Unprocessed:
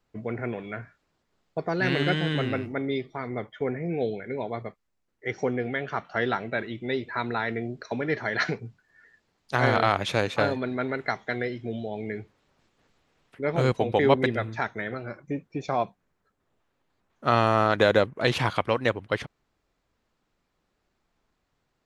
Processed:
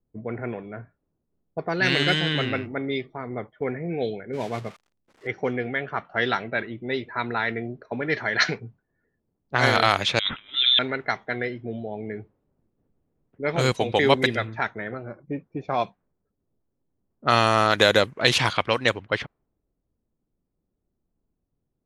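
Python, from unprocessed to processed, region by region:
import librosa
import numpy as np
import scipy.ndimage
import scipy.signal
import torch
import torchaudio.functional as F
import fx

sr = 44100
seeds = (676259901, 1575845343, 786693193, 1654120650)

y = fx.chain(x, sr, fx.crossing_spikes(level_db=-26.0),
    fx.peak_eq(hz=140.0, db=5.0, octaves=2.4), at=(4.33, 5.27))
y = fx.chain(y, sr, fx.over_compress(threshold_db=-30.0, ratio=-0.5),
    fx.freq_invert(carrier_hz=3800), at=(10.19, 10.79))
y = fx.high_shelf(y, sr, hz=4700.0, db=5.0)
y = fx.env_lowpass(y, sr, base_hz=340.0, full_db=-18.5)
y = fx.high_shelf(y, sr, hz=2100.0, db=11.0)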